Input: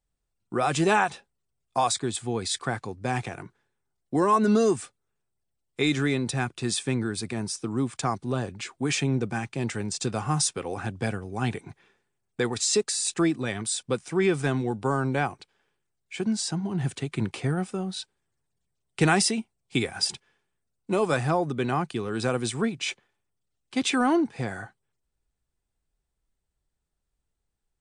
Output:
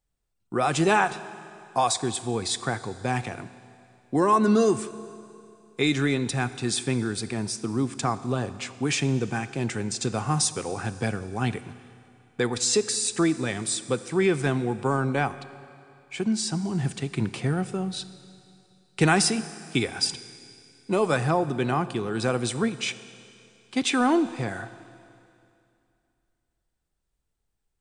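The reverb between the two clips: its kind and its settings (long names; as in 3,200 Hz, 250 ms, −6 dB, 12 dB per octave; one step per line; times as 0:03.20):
four-comb reverb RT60 2.6 s, combs from 25 ms, DRR 14 dB
level +1 dB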